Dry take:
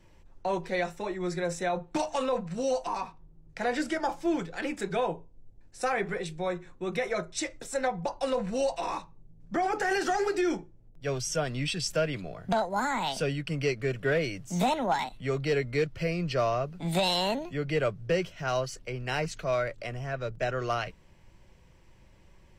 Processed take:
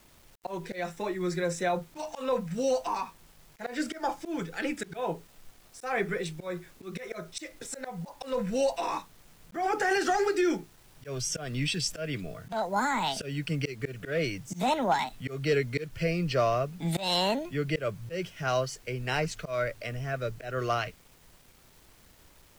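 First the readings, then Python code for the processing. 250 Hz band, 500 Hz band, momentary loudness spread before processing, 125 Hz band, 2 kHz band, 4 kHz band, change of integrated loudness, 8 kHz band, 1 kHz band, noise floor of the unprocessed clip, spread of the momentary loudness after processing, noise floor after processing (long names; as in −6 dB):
−0.5 dB, −1.5 dB, 7 LU, 0.0 dB, −0.5 dB, +0.5 dB, −0.5 dB, +0.5 dB, −0.5 dB, −57 dBFS, 13 LU, −58 dBFS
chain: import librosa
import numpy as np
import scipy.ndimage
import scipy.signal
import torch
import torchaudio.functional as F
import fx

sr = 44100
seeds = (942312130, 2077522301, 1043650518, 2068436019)

y = fx.noise_reduce_blind(x, sr, reduce_db=9)
y = fx.dmg_noise_colour(y, sr, seeds[0], colour='pink', level_db=-62.0)
y = fx.auto_swell(y, sr, attack_ms=171.0)
y = fx.quant_dither(y, sr, seeds[1], bits=10, dither='none')
y = y * 10.0 ** (1.5 / 20.0)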